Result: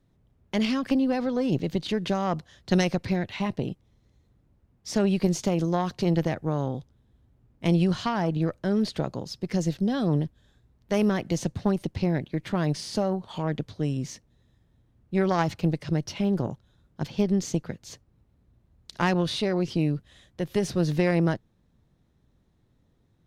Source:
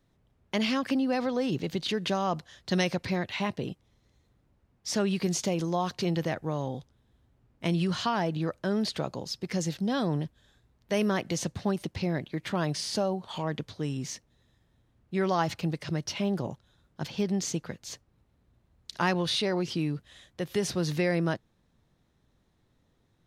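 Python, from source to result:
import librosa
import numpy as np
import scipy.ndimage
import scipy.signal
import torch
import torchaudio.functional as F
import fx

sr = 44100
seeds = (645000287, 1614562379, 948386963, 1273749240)

y = fx.low_shelf(x, sr, hz=460.0, db=8.0)
y = fx.cheby_harmonics(y, sr, harmonics=(2, 3), levels_db=(-13, -20), full_scale_db=-10.0)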